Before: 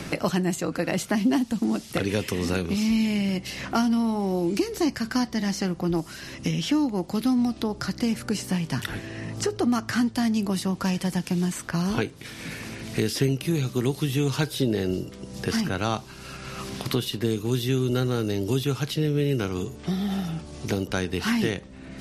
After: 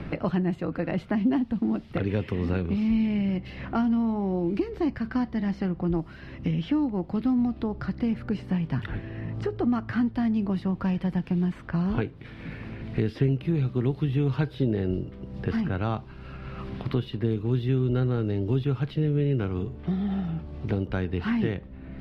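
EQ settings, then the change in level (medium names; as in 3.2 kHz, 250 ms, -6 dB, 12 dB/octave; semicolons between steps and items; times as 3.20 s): distance through air 420 m; bass shelf 99 Hz +11.5 dB; -2.5 dB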